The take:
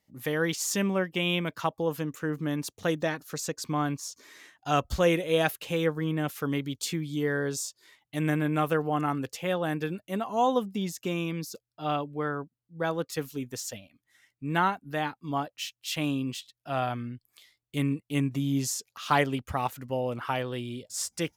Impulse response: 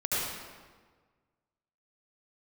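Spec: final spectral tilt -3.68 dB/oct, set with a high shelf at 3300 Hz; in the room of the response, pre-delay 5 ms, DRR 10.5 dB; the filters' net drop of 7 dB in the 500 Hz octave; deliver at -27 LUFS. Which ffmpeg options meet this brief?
-filter_complex "[0:a]equalizer=f=500:t=o:g=-8.5,highshelf=f=3.3k:g=5,asplit=2[a][b];[1:a]atrim=start_sample=2205,adelay=5[c];[b][c]afir=irnorm=-1:irlink=0,volume=-20dB[d];[a][d]amix=inputs=2:normalize=0,volume=4dB"

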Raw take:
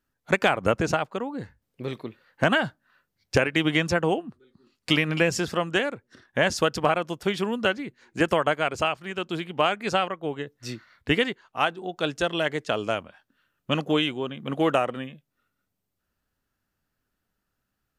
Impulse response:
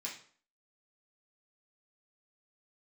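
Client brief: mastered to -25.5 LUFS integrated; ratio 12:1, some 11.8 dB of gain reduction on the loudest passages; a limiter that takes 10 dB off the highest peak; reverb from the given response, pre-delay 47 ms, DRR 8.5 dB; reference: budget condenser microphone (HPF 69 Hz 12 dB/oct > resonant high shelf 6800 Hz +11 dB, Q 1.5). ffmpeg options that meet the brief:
-filter_complex "[0:a]acompressor=threshold=-29dB:ratio=12,alimiter=limit=-24dB:level=0:latency=1,asplit=2[a][b];[1:a]atrim=start_sample=2205,adelay=47[c];[b][c]afir=irnorm=-1:irlink=0,volume=-8dB[d];[a][d]amix=inputs=2:normalize=0,highpass=69,highshelf=f=6.8k:t=q:w=1.5:g=11,volume=11dB"

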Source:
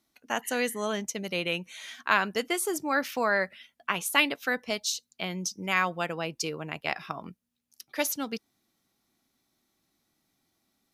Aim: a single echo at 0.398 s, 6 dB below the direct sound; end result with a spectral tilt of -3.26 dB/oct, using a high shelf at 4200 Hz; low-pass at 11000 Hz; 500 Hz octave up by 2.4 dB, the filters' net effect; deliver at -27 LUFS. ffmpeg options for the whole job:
-af "lowpass=11k,equalizer=f=500:t=o:g=3,highshelf=f=4.2k:g=-4.5,aecho=1:1:398:0.501,volume=2dB"

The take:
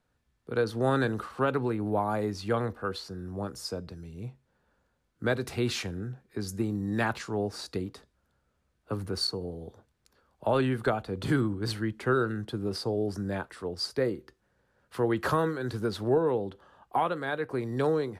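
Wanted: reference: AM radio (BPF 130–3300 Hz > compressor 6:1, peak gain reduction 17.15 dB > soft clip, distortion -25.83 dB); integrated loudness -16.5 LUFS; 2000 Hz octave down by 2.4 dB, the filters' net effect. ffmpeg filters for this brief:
-af "highpass=130,lowpass=3.3k,equalizer=f=2k:t=o:g=-3,acompressor=threshold=-39dB:ratio=6,asoftclip=threshold=-28.5dB,volume=27.5dB"

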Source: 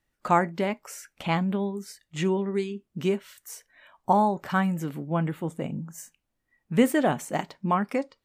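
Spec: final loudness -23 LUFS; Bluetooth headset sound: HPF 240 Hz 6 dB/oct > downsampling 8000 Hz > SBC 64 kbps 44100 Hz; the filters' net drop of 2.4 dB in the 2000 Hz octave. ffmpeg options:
-af "highpass=f=240:p=1,equalizer=f=2k:t=o:g=-3,aresample=8000,aresample=44100,volume=6dB" -ar 44100 -c:a sbc -b:a 64k

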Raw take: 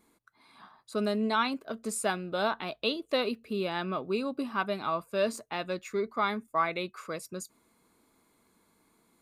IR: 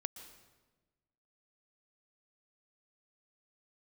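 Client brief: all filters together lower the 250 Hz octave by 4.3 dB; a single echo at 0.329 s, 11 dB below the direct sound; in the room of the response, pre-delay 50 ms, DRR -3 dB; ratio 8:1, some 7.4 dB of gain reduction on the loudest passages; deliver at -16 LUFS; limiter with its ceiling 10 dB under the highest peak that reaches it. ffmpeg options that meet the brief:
-filter_complex "[0:a]equalizer=f=250:t=o:g=-5.5,acompressor=threshold=-31dB:ratio=8,alimiter=level_in=7dB:limit=-24dB:level=0:latency=1,volume=-7dB,aecho=1:1:329:0.282,asplit=2[a][b];[1:a]atrim=start_sample=2205,adelay=50[c];[b][c]afir=irnorm=-1:irlink=0,volume=4.5dB[d];[a][d]amix=inputs=2:normalize=0,volume=20dB"

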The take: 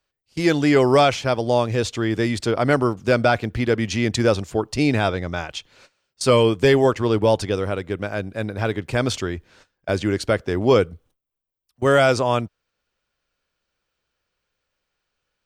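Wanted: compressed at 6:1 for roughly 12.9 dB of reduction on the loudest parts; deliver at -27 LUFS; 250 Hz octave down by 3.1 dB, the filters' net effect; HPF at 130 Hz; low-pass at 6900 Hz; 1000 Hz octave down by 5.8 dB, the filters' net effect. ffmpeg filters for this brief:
-af "highpass=130,lowpass=6.9k,equalizer=f=250:t=o:g=-3,equalizer=f=1k:t=o:g=-8.5,acompressor=threshold=-28dB:ratio=6,volume=6dB"

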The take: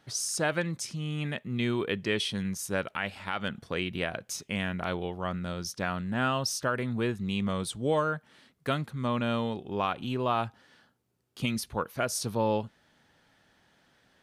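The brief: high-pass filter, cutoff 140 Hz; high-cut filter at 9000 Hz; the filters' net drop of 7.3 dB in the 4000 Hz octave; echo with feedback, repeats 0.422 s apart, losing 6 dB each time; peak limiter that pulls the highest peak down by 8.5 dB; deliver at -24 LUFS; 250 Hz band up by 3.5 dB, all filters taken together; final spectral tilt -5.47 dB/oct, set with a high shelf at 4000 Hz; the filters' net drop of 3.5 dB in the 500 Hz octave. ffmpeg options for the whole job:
-af "highpass=140,lowpass=9k,equalizer=f=250:t=o:g=6.5,equalizer=f=500:t=o:g=-6,highshelf=f=4k:g=-4.5,equalizer=f=4k:t=o:g=-7.5,alimiter=level_in=0.5dB:limit=-24dB:level=0:latency=1,volume=-0.5dB,aecho=1:1:422|844|1266|1688|2110|2532:0.501|0.251|0.125|0.0626|0.0313|0.0157,volume=10dB"

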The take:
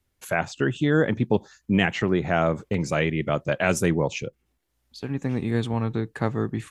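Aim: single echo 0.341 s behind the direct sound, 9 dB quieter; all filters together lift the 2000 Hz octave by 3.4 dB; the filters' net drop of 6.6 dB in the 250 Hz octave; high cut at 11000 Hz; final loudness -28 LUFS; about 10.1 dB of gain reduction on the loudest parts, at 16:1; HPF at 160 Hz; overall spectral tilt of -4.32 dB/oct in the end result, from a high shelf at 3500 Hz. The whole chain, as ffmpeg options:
-af "highpass=160,lowpass=11k,equalizer=f=250:t=o:g=-8,equalizer=f=2k:t=o:g=6,highshelf=f=3.5k:g=-5.5,acompressor=threshold=-27dB:ratio=16,aecho=1:1:341:0.355,volume=5.5dB"

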